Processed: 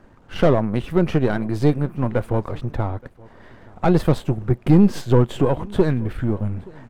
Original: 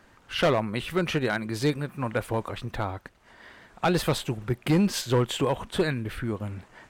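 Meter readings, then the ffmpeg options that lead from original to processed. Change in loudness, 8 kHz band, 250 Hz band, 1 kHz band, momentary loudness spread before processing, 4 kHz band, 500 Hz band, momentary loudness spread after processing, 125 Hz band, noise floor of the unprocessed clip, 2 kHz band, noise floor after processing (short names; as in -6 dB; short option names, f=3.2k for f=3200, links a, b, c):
+7.0 dB, n/a, +8.5 dB, +3.0 dB, 9 LU, -5.5 dB, +6.5 dB, 10 LU, +9.5 dB, -58 dBFS, -2.0 dB, -50 dBFS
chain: -af "aeval=exprs='if(lt(val(0),0),0.447*val(0),val(0))':c=same,tiltshelf=f=1.2k:g=8.5,aecho=1:1:874:0.0631,volume=3.5dB"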